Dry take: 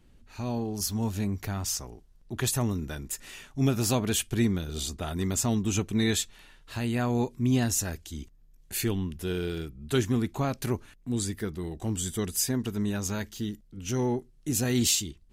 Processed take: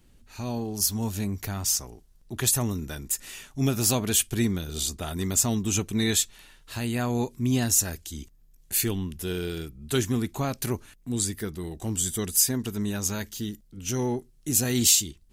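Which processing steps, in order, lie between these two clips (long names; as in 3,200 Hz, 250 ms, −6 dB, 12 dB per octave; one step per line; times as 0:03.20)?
high-shelf EQ 5,100 Hz +9.5 dB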